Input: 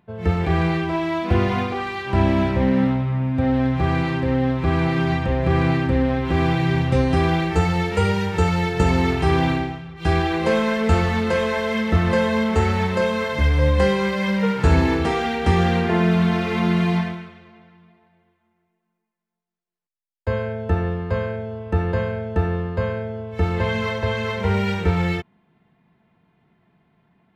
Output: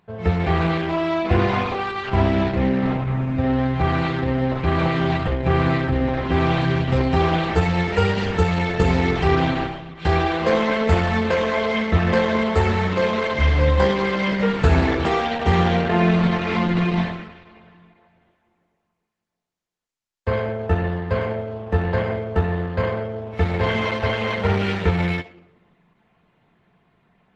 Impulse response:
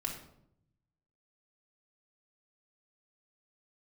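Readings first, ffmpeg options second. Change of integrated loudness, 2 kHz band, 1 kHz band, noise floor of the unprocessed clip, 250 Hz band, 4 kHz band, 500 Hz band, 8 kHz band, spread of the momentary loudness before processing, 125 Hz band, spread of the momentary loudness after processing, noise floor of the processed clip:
0.0 dB, +1.0 dB, +1.5 dB, -76 dBFS, -1.0 dB, +1.0 dB, +1.0 dB, n/a, 6 LU, -0.5 dB, 6 LU, -75 dBFS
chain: -filter_complex "[0:a]asplit=2[a][b];[b]acrossover=split=240 7400:gain=0.0794 1 0.0891[c][d][e];[c][d][e]amix=inputs=3:normalize=0[f];[1:a]atrim=start_sample=2205,highshelf=f=5.7k:g=5[g];[f][g]afir=irnorm=-1:irlink=0,volume=-6.5dB[h];[a][h]amix=inputs=2:normalize=0" -ar 48000 -c:a libopus -b:a 12k

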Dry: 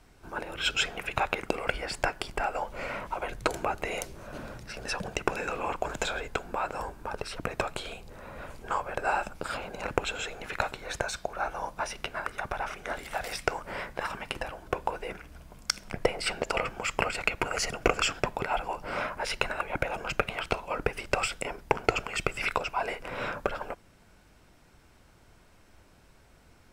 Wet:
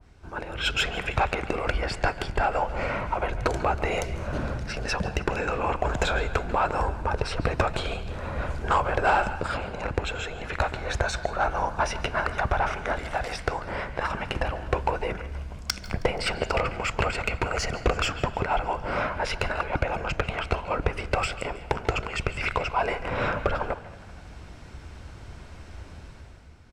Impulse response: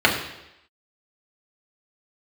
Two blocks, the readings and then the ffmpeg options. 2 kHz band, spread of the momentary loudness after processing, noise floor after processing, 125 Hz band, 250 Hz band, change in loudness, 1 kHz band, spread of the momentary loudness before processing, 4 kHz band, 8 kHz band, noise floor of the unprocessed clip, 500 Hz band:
+3.0 dB, 10 LU, -44 dBFS, +11.0 dB, +5.5 dB, +4.0 dB, +5.0 dB, 9 LU, +1.5 dB, -1.5 dB, -58 dBFS, +4.5 dB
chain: -filter_complex "[0:a]lowpass=7.1k,equalizer=f=70:w=0.98:g=10.5,dynaudnorm=f=100:g=13:m=11.5dB,asoftclip=type=tanh:threshold=-13.5dB,asplit=6[a][b][c][d][e][f];[b]adelay=159,afreqshift=38,volume=-21.5dB[g];[c]adelay=318,afreqshift=76,volume=-25.4dB[h];[d]adelay=477,afreqshift=114,volume=-29.3dB[i];[e]adelay=636,afreqshift=152,volume=-33.1dB[j];[f]adelay=795,afreqshift=190,volume=-37dB[k];[a][g][h][i][j][k]amix=inputs=6:normalize=0,asplit=2[l][m];[1:a]atrim=start_sample=2205,highshelf=f=4.3k:g=10.5,adelay=141[n];[m][n]afir=irnorm=-1:irlink=0,volume=-36.5dB[o];[l][o]amix=inputs=2:normalize=0,adynamicequalizer=threshold=0.00891:dfrequency=1800:dqfactor=0.7:tfrequency=1800:tqfactor=0.7:attack=5:release=100:ratio=0.375:range=2:mode=cutabove:tftype=highshelf"

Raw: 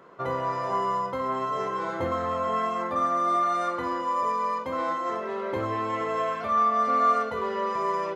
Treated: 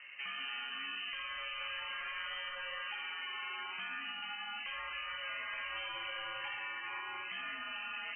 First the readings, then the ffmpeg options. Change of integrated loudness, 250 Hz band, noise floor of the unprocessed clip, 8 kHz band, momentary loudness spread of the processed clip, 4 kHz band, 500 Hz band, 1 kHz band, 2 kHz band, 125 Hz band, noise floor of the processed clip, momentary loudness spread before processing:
-13.0 dB, -28.0 dB, -33 dBFS, n/a, 1 LU, +6.0 dB, -27.5 dB, -21.5 dB, 0.0 dB, under -25 dB, -44 dBFS, 7 LU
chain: -filter_complex "[0:a]dynaudnorm=f=190:g=9:m=3dB,lowshelf=f=420:g=-4,afftfilt=real='re*lt(hypot(re,im),0.0794)':imag='im*lt(hypot(re,im),0.0794)':win_size=1024:overlap=0.75,lowpass=f=2.7k:t=q:w=0.5098,lowpass=f=2.7k:t=q:w=0.6013,lowpass=f=2.7k:t=q:w=0.9,lowpass=f=2.7k:t=q:w=2.563,afreqshift=-3200,asplit=2[a][b];[b]alimiter=level_in=12dB:limit=-24dB:level=0:latency=1:release=195,volume=-12dB,volume=2dB[c];[a][c]amix=inputs=2:normalize=0,volume=-6.5dB"

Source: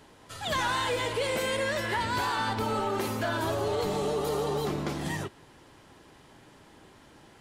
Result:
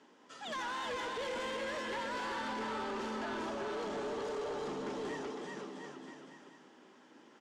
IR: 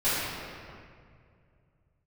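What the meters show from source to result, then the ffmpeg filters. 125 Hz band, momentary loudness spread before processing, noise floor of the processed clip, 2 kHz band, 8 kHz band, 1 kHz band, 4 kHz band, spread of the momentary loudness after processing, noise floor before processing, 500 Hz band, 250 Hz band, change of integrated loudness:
-19.5 dB, 5 LU, -61 dBFS, -8.5 dB, -12.0 dB, -8.5 dB, -10.0 dB, 13 LU, -56 dBFS, -8.5 dB, -7.5 dB, -9.5 dB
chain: -af "highpass=f=220:w=0.5412,highpass=f=220:w=1.3066,equalizer=f=240:t=q:w=4:g=5,equalizer=f=680:t=q:w=4:g=-4,equalizer=f=2.3k:t=q:w=4:g=-3,equalizer=f=4.1k:t=q:w=4:g=-7,lowpass=f=6.7k:w=0.5412,lowpass=f=6.7k:w=1.3066,aecho=1:1:380|703|977.6|1211|1409:0.631|0.398|0.251|0.158|0.1,asoftclip=type=tanh:threshold=-27.5dB,volume=-6.5dB"

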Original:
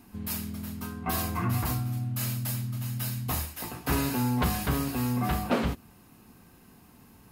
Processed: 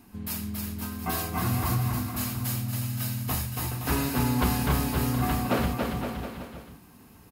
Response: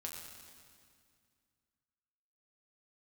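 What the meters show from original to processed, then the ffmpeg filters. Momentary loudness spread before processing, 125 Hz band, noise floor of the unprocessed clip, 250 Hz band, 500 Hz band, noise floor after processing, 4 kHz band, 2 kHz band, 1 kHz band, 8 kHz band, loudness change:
8 LU, +2.0 dB, -56 dBFS, +1.5 dB, +2.0 dB, -53 dBFS, +2.0 dB, +2.0 dB, +2.0 dB, +2.0 dB, +1.5 dB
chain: -af "aecho=1:1:280|518|720.3|892.3|1038:0.631|0.398|0.251|0.158|0.1"

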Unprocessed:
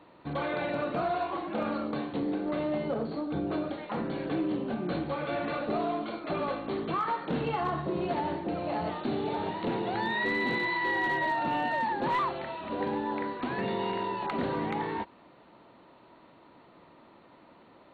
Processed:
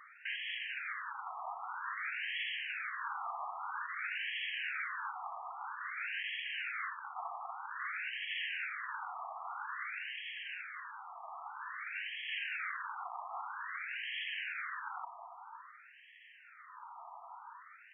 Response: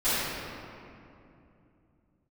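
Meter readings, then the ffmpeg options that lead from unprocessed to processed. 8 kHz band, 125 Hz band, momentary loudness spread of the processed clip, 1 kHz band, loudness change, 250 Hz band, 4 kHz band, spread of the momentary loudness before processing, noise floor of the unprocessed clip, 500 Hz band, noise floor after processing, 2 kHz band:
n/a, under -40 dB, 14 LU, -10.5 dB, -8.5 dB, under -40 dB, 0.0 dB, 6 LU, -57 dBFS, -28.0 dB, -58 dBFS, -2.5 dB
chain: -af "aeval=exprs='(mod(84.1*val(0)+1,2)-1)/84.1':c=same,afftfilt=real='re*between(b*sr/1024,910*pow(2400/910,0.5+0.5*sin(2*PI*0.51*pts/sr))/1.41,910*pow(2400/910,0.5+0.5*sin(2*PI*0.51*pts/sr))*1.41)':imag='im*between(b*sr/1024,910*pow(2400/910,0.5+0.5*sin(2*PI*0.51*pts/sr))/1.41,910*pow(2400/910,0.5+0.5*sin(2*PI*0.51*pts/sr))*1.41)':win_size=1024:overlap=0.75,volume=10.5dB"

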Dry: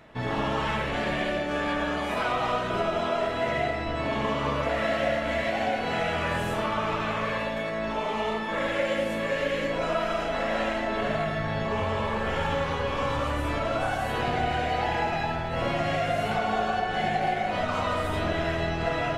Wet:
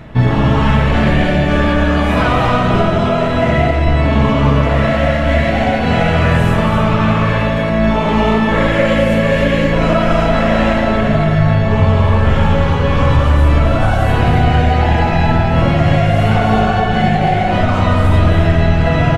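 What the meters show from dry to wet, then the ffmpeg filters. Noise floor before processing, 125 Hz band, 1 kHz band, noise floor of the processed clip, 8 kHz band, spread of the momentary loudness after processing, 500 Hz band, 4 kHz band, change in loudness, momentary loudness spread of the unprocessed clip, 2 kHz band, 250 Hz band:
-30 dBFS, +22.5 dB, +11.0 dB, -15 dBFS, n/a, 2 LU, +11.5 dB, +10.0 dB, +14.5 dB, 2 LU, +11.0 dB, +18.0 dB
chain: -filter_complex "[0:a]bass=f=250:g=13,treble=f=4k:g=-3,apsyclip=13.5dB,asplit=2[a][b];[b]aecho=0:1:272:0.473[c];[a][c]amix=inputs=2:normalize=0,dynaudnorm=f=160:g=3:m=11.5dB,volume=-1dB"

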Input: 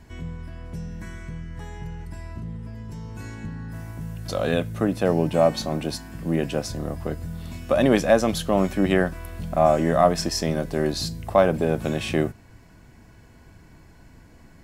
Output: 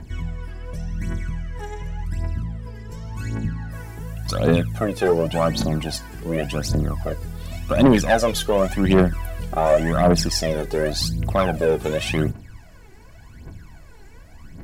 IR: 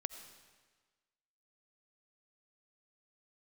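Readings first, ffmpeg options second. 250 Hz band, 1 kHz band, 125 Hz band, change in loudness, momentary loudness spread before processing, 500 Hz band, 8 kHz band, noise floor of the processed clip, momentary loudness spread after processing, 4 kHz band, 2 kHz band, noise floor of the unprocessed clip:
+2.5 dB, +0.5 dB, +4.5 dB, +1.0 dB, 17 LU, +1.0 dB, +4.0 dB, -44 dBFS, 16 LU, +4.0 dB, +2.5 dB, -51 dBFS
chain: -af "aphaser=in_gain=1:out_gain=1:delay=2.6:decay=0.72:speed=0.89:type=triangular,asoftclip=type=tanh:threshold=-9dB,volume=1.5dB"

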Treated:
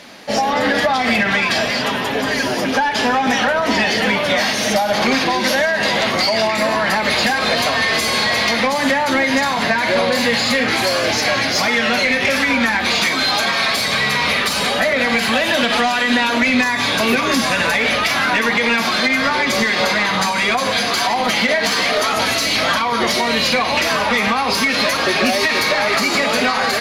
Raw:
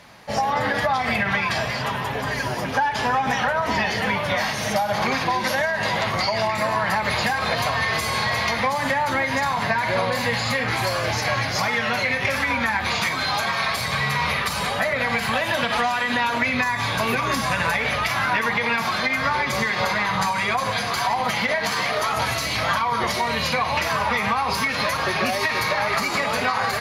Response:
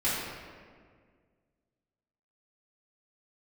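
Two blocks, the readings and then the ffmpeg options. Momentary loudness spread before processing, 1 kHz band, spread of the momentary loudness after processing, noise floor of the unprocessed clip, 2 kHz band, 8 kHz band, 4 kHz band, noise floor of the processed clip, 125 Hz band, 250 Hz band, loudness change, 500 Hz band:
2 LU, +3.0 dB, 2 LU, -26 dBFS, +6.0 dB, +8.0 dB, +9.0 dB, -20 dBFS, -1.0 dB, +9.5 dB, +6.0 dB, +7.0 dB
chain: -filter_complex "[0:a]equalizer=f=125:t=o:w=1:g=-7,equalizer=f=250:t=o:w=1:g=9,equalizer=f=1k:t=o:w=1:g=-9,equalizer=f=2k:t=o:w=1:g=-4,asplit=2[a][b];[b]highpass=f=720:p=1,volume=15dB,asoftclip=type=tanh:threshold=-9.5dB[c];[a][c]amix=inputs=2:normalize=0,lowpass=f=4.9k:p=1,volume=-6dB,volume=4dB"

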